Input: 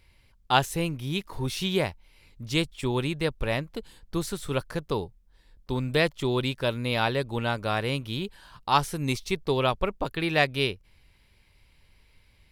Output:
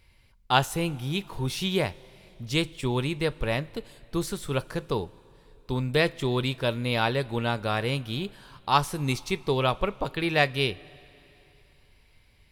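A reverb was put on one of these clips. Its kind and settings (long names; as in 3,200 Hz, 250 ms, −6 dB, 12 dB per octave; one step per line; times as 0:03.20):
coupled-rooms reverb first 0.21 s, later 3.2 s, from −19 dB, DRR 14.5 dB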